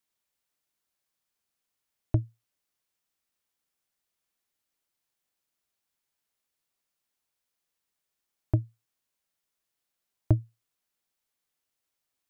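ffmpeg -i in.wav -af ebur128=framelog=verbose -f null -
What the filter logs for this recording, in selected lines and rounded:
Integrated loudness:
  I:         -30.8 LUFS
  Threshold: -41.8 LUFS
Loudness range:
  LRA:         4.6 LU
  Threshold: -59.0 LUFS
  LRA low:   -40.6 LUFS
  LRA high:  -36.1 LUFS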